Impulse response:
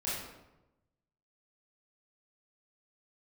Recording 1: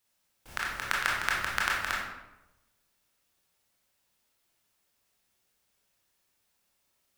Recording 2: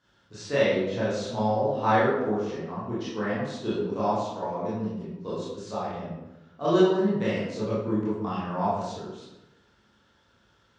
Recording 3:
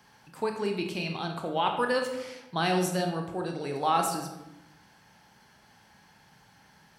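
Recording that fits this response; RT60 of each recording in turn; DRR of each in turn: 2; 1.0, 1.0, 1.0 s; -4.0, -10.0, 3.0 dB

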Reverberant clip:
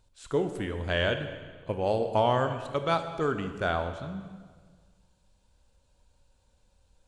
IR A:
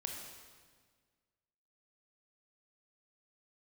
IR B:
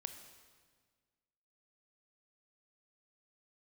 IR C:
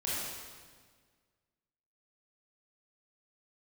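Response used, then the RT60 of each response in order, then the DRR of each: B; 1.6, 1.6, 1.6 s; 1.0, 7.5, -8.5 dB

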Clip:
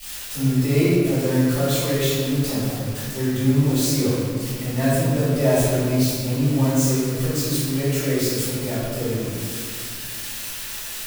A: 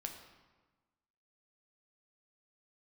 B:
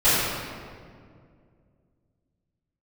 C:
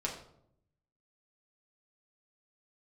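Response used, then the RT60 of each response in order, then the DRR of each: B; 1.3, 2.1, 0.70 s; 3.0, -15.5, -3.0 dB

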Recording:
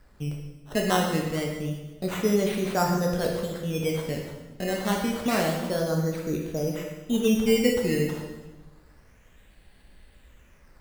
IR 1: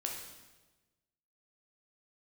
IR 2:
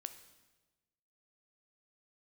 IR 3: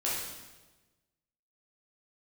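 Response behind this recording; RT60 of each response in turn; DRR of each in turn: 1; 1.2, 1.2, 1.2 s; 0.0, 9.5, -7.5 dB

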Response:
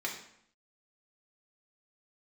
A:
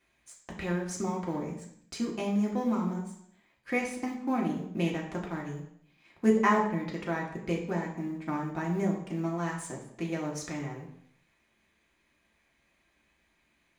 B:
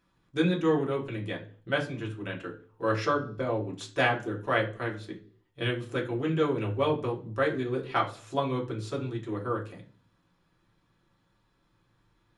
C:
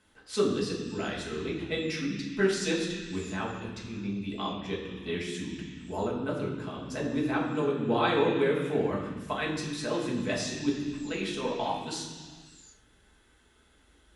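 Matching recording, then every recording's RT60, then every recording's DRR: A; 0.70 s, 0.45 s, not exponential; -2.0, -2.0, -5.0 dB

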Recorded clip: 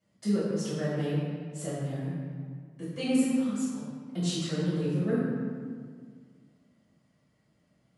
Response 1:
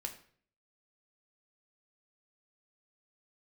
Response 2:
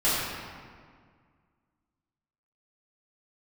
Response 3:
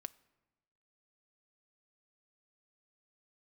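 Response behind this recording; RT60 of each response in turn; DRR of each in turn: 2; 0.50, 1.9, 1.1 s; 4.0, -12.5, 15.5 dB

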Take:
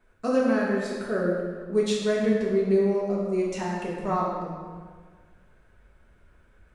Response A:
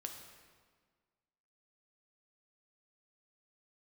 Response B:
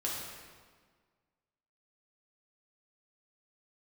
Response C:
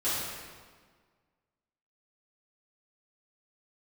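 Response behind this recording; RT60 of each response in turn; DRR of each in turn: B; 1.6, 1.6, 1.6 s; 3.0, -5.0, -13.5 dB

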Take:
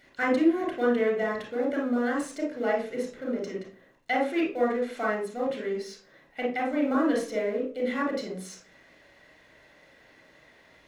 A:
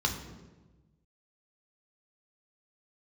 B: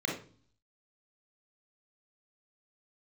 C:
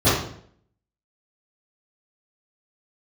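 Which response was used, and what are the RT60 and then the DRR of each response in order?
B; 1.2, 0.45, 0.60 s; 2.5, -1.0, -16.5 dB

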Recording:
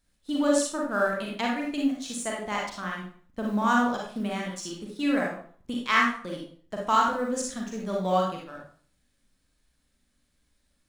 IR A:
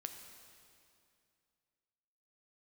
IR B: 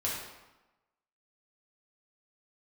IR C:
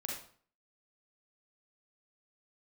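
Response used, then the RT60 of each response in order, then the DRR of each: C; 2.4, 1.1, 0.50 s; 5.0, -6.5, -2.5 dB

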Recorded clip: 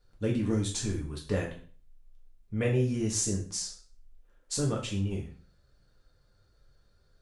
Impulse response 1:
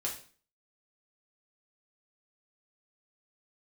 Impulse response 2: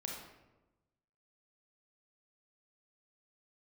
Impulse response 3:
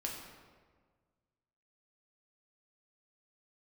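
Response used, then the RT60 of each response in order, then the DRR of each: 1; 0.40, 1.1, 1.6 s; -3.0, -1.0, -1.5 dB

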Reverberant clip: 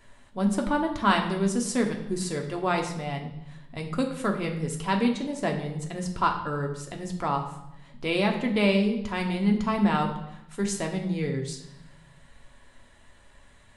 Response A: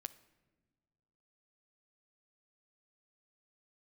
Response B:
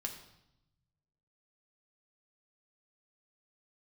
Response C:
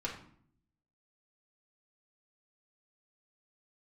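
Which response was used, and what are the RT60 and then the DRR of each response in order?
B; not exponential, 0.85 s, 0.60 s; 13.0, 1.5, -5.0 dB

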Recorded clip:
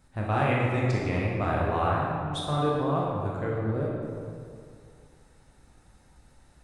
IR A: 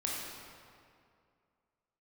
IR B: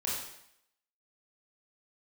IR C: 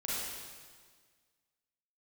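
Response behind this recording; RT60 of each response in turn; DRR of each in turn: A; 2.3, 0.75, 1.7 s; -4.0, -6.0, -8.0 dB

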